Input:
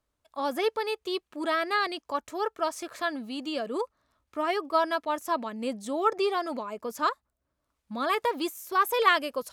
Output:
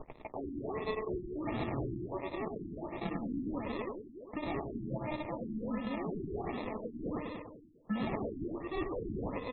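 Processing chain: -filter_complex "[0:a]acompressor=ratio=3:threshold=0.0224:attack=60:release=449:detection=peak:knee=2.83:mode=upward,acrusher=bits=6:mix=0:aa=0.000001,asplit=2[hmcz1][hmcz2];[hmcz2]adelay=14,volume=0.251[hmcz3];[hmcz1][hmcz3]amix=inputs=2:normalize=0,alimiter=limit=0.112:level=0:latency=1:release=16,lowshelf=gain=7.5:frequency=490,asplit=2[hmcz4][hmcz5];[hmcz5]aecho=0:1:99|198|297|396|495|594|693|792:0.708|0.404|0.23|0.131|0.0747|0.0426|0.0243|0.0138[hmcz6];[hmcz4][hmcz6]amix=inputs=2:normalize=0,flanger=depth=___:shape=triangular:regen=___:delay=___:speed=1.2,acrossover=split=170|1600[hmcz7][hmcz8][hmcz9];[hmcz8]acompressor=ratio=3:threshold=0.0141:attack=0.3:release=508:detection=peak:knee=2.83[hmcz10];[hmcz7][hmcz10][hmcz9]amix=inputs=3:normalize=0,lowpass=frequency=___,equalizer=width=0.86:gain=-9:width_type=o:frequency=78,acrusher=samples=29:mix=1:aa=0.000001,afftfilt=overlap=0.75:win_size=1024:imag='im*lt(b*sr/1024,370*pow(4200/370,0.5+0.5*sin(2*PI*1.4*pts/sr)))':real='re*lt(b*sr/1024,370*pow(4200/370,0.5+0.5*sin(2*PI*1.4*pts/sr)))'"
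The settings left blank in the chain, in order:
7.6, -50, 2.6, 5800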